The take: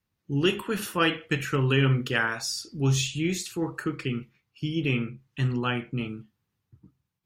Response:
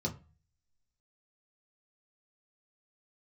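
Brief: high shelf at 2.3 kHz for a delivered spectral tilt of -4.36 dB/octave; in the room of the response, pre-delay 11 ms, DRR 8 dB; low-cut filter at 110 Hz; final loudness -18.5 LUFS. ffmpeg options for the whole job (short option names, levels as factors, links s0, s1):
-filter_complex "[0:a]highpass=110,highshelf=f=2300:g=4.5,asplit=2[s0][s1];[1:a]atrim=start_sample=2205,adelay=11[s2];[s1][s2]afir=irnorm=-1:irlink=0,volume=0.282[s3];[s0][s3]amix=inputs=2:normalize=0,volume=2.11"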